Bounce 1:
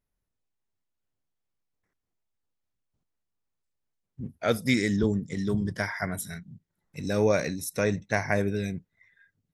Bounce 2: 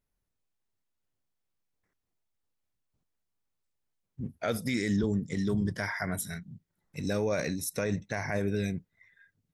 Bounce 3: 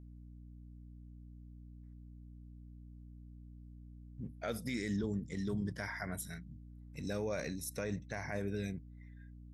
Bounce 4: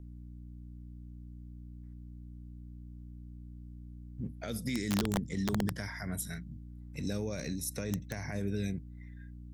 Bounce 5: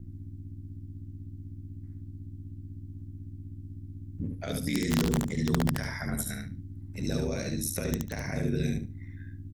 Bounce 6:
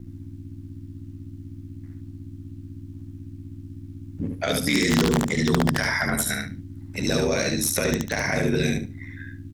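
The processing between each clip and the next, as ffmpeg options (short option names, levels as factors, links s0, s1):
-af "alimiter=limit=0.106:level=0:latency=1:release=49"
-af "aeval=exprs='val(0)+0.00708*(sin(2*PI*60*n/s)+sin(2*PI*2*60*n/s)/2+sin(2*PI*3*60*n/s)/3+sin(2*PI*4*60*n/s)/4+sin(2*PI*5*60*n/s)/5)':c=same,volume=0.398"
-filter_complex "[0:a]acrossover=split=330|3000[s0][s1][s2];[s1]acompressor=threshold=0.00398:ratio=6[s3];[s0][s3][s2]amix=inputs=3:normalize=0,aeval=exprs='(mod(26.6*val(0)+1,2)-1)/26.6':c=same,volume=1.88"
-af "aeval=exprs='val(0)*sin(2*PI*38*n/s)':c=same,aecho=1:1:72|144|216:0.631|0.107|0.0182,volume=2.11"
-filter_complex "[0:a]asplit=2[s0][s1];[s1]highpass=f=720:p=1,volume=5.01,asoftclip=type=tanh:threshold=0.168[s2];[s0][s2]amix=inputs=2:normalize=0,lowpass=f=6000:p=1,volume=0.501,volume=2.11"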